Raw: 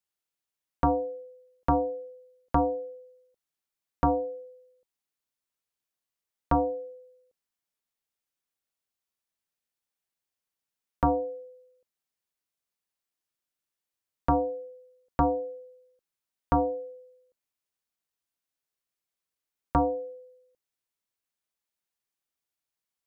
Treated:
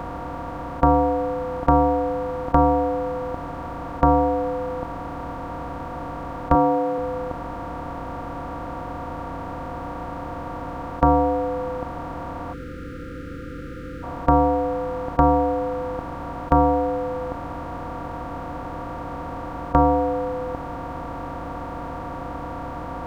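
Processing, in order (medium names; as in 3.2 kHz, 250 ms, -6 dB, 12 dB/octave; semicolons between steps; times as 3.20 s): spectral levelling over time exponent 0.2; 6.55–6.98 s: high-pass 130 Hz 24 dB/octave; 12.53–14.03 s: spectral selection erased 520–1200 Hz; trim +5 dB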